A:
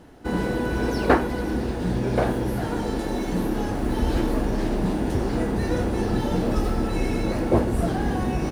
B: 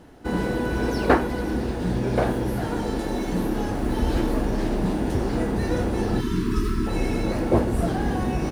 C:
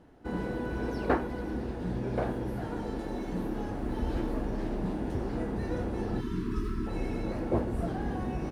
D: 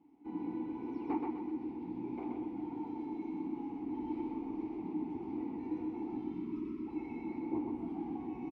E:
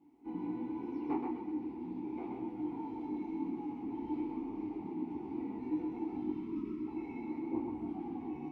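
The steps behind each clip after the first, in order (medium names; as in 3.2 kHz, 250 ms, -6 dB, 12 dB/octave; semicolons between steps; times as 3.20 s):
spectral selection erased 6.21–6.87 s, 450–910 Hz
treble shelf 3.3 kHz -9 dB; trim -8.5 dB
vowel filter u; flange 0.86 Hz, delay 1.1 ms, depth 8.8 ms, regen -71%; feedback delay 127 ms, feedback 41%, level -3.5 dB; trim +6 dB
detune thickener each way 11 cents; trim +4 dB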